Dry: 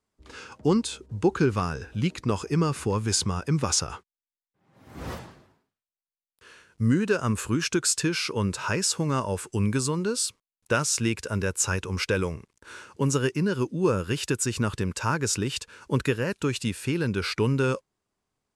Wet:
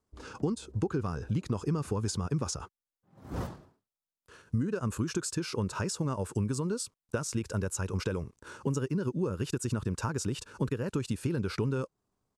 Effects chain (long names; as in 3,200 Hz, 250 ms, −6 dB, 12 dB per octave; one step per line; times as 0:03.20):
tempo change 1.5×
downward compressor, threshold −30 dBFS, peak gain reduction 12.5 dB
drawn EQ curve 140 Hz 0 dB, 1,300 Hz −4 dB, 2,100 Hz −11 dB, 6,000 Hz −6 dB
level +3.5 dB